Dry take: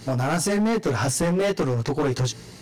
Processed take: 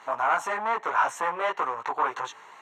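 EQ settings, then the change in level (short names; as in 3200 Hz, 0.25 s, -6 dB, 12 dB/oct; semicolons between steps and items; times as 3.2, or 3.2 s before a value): running mean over 9 samples; resonant high-pass 1000 Hz, resonance Q 3.5; 0.0 dB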